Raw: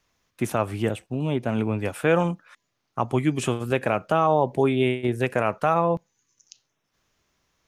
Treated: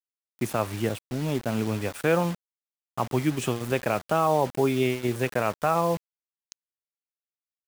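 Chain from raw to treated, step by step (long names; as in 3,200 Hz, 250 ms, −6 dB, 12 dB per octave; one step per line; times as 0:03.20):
bit reduction 6 bits
level −2.5 dB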